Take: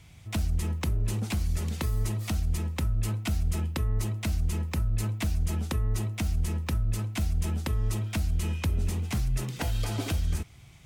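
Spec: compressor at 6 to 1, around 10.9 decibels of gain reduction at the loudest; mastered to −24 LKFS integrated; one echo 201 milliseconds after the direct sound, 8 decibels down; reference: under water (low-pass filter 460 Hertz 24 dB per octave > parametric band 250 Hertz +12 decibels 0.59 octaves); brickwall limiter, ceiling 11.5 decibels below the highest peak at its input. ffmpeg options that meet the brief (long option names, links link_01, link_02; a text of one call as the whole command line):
ffmpeg -i in.wav -af "acompressor=threshold=-35dB:ratio=6,alimiter=level_in=11.5dB:limit=-24dB:level=0:latency=1,volume=-11.5dB,lowpass=frequency=460:width=0.5412,lowpass=frequency=460:width=1.3066,equalizer=frequency=250:width_type=o:width=0.59:gain=12,aecho=1:1:201:0.398,volume=18dB" out.wav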